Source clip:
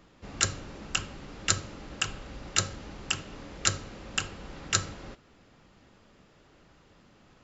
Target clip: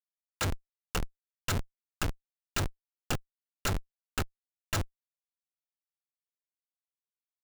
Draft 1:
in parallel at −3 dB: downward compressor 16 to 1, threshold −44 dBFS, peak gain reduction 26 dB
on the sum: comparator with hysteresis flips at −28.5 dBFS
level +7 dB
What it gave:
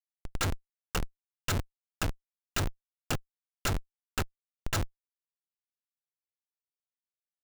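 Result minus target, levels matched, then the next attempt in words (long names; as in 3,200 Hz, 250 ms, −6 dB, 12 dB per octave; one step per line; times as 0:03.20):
downward compressor: peak gain reduction −8.5 dB
in parallel at −3 dB: downward compressor 16 to 1, threshold −53 dBFS, peak gain reduction 34 dB
on the sum: comparator with hysteresis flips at −28.5 dBFS
level +7 dB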